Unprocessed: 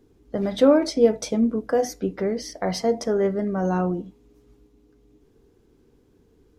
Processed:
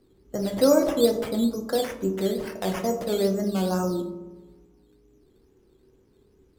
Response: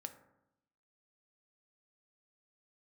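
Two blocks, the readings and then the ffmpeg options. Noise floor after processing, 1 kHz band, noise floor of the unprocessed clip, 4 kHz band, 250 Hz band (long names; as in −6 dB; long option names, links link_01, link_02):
−61 dBFS, −2.5 dB, −60 dBFS, +1.0 dB, −2.0 dB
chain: -filter_complex "[0:a]acrusher=samples=9:mix=1:aa=0.000001:lfo=1:lforange=5.4:lforate=2.3,bandreject=frequency=101:width_type=h:width=4,bandreject=frequency=202:width_type=h:width=4,bandreject=frequency=303:width_type=h:width=4,bandreject=frequency=404:width_type=h:width=4,bandreject=frequency=505:width_type=h:width=4,bandreject=frequency=606:width_type=h:width=4,bandreject=frequency=707:width_type=h:width=4,bandreject=frequency=808:width_type=h:width=4,bandreject=frequency=909:width_type=h:width=4,bandreject=frequency=1010:width_type=h:width=4,bandreject=frequency=1111:width_type=h:width=4,bandreject=frequency=1212:width_type=h:width=4,bandreject=frequency=1313:width_type=h:width=4,bandreject=frequency=1414:width_type=h:width=4,bandreject=frequency=1515:width_type=h:width=4,bandreject=frequency=1616:width_type=h:width=4,bandreject=frequency=1717:width_type=h:width=4,bandreject=frequency=1818:width_type=h:width=4,bandreject=frequency=1919:width_type=h:width=4,bandreject=frequency=2020:width_type=h:width=4,bandreject=frequency=2121:width_type=h:width=4,bandreject=frequency=2222:width_type=h:width=4,bandreject=frequency=2323:width_type=h:width=4,bandreject=frequency=2424:width_type=h:width=4,bandreject=frequency=2525:width_type=h:width=4,bandreject=frequency=2626:width_type=h:width=4,bandreject=frequency=2727:width_type=h:width=4,bandreject=frequency=2828:width_type=h:width=4,bandreject=frequency=2929:width_type=h:width=4,bandreject=frequency=3030:width_type=h:width=4[link_01];[1:a]atrim=start_sample=2205,asetrate=30429,aresample=44100[link_02];[link_01][link_02]afir=irnorm=-1:irlink=0"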